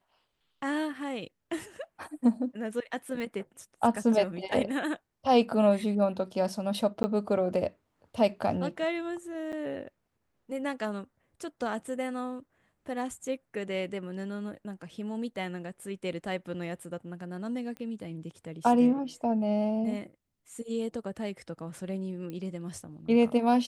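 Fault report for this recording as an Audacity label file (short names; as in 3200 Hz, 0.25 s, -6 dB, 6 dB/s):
3.200000	3.200000	pop -25 dBFS
7.030000	7.040000	gap 10 ms
9.520000	9.530000	gap 8.1 ms
17.770000	17.770000	pop -29 dBFS
22.300000	22.300000	pop -27 dBFS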